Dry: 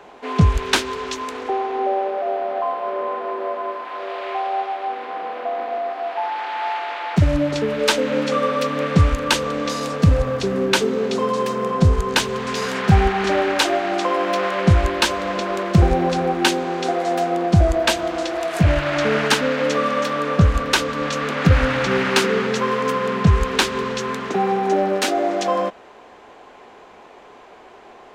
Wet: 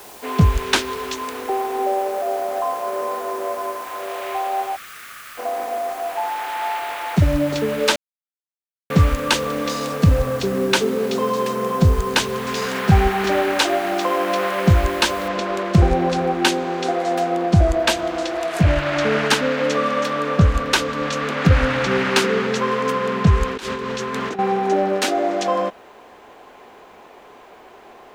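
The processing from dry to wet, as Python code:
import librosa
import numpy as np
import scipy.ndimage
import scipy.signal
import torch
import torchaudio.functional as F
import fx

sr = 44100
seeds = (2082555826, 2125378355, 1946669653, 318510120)

y = fx.brickwall_highpass(x, sr, low_hz=1100.0, at=(4.75, 5.37), fade=0.02)
y = fx.noise_floor_step(y, sr, seeds[0], at_s=15.28, before_db=-43, after_db=-68, tilt_db=0.0)
y = fx.over_compress(y, sr, threshold_db=-27.0, ratio=-1.0, at=(23.47, 24.39))
y = fx.edit(y, sr, fx.silence(start_s=7.96, length_s=0.94), tone=tone)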